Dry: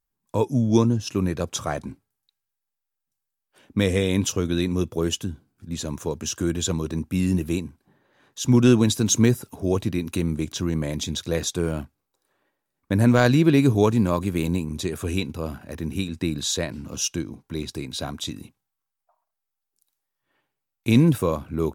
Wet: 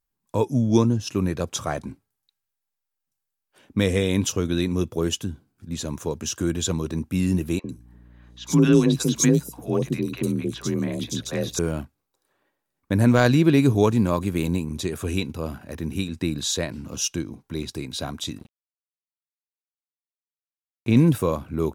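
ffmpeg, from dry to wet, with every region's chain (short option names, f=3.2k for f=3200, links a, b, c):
-filter_complex "[0:a]asettb=1/sr,asplit=3[a][b][c];[a]atrim=end=7.594[d];[b]atrim=start=7.59:end=11.59,asetpts=PTS-STARTPTS,afade=t=in:d=0.004:c=qsin,afade=t=out:st=3.996:d=0.004:c=qsin,afreqshift=34,aeval=exprs='val(0)+0.00398*(sin(2*PI*60*n/s)+sin(2*PI*2*60*n/s)/2+sin(2*PI*3*60*n/s)/3+sin(2*PI*4*60*n/s)/4+sin(2*PI*5*60*n/s)/5)':c=same,acrossover=split=690|4000[e][f][g];[e]adelay=50[h];[g]adelay=100[i];[h][f][i]amix=inputs=3:normalize=0,atrim=end_sample=176400[j];[c]atrim=start=11.586[k];[d][j]acrossfade=d=0.004:c1=hsin:c2=qsin[l];[l][k]acrossfade=d=0.004:c1=qsin:c2=hsin,asettb=1/sr,asplit=3[m][n][o];[m]atrim=end=18.384[p];[n]atrim=start=18.38:end=20.97,asetpts=PTS-STARTPTS,afade=t=in:d=0.004:c=qsin,afade=t=out:st=2.586:d=0.004:c=qsin,lowpass=f=2.1k:p=1,bandreject=f=290:w=9.5,aeval=exprs='sgn(val(0))*max(abs(val(0))-0.00473,0)':c=same[q];[o]atrim=start=20.966[r];[p][q]acrossfade=d=0.004:c1=hsin:c2=qsin[s];[s][r]acrossfade=d=0.004:c1=qsin:c2=hsin"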